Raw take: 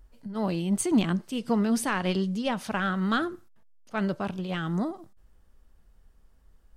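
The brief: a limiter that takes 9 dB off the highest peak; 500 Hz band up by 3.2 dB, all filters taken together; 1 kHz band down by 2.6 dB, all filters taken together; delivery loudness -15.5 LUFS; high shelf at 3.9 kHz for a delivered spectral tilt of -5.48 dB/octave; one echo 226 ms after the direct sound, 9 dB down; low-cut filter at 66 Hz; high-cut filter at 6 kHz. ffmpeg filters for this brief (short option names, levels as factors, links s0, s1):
-af "highpass=66,lowpass=6000,equalizer=f=500:t=o:g=5.5,equalizer=f=1000:t=o:g=-6,highshelf=f=3900:g=6.5,alimiter=limit=0.1:level=0:latency=1,aecho=1:1:226:0.355,volume=4.73"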